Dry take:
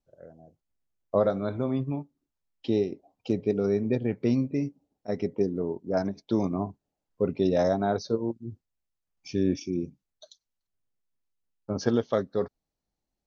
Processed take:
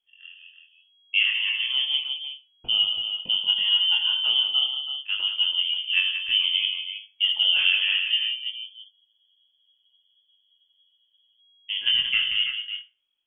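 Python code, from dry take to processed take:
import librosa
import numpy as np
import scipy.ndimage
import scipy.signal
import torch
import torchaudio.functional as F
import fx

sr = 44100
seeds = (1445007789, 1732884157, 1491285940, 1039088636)

y = fx.wow_flutter(x, sr, seeds[0], rate_hz=2.1, depth_cents=25.0)
y = fx.doubler(y, sr, ms=22.0, db=-3)
y = fx.echo_multitap(y, sr, ms=(80, 182, 328), db=(-9.5, -8.5, -8.0))
y = fx.rev_schroeder(y, sr, rt60_s=0.33, comb_ms=28, drr_db=13.5)
y = fx.freq_invert(y, sr, carrier_hz=3300)
y = fx.spec_freeze(y, sr, seeds[1], at_s=8.93, hold_s=2.45)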